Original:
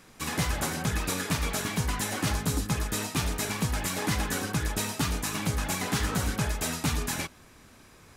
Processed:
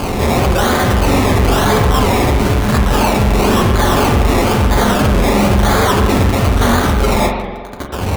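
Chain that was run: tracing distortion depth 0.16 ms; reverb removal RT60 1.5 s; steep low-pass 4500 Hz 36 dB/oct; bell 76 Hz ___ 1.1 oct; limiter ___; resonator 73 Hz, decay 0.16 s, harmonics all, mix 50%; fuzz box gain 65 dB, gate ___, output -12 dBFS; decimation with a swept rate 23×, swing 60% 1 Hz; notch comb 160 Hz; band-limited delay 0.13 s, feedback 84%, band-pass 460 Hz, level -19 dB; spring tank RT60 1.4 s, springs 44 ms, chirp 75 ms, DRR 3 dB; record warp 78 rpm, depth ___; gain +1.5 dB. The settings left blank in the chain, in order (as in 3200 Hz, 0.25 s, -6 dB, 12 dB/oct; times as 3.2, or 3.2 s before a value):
+8 dB, -25.5 dBFS, -59 dBFS, 100 cents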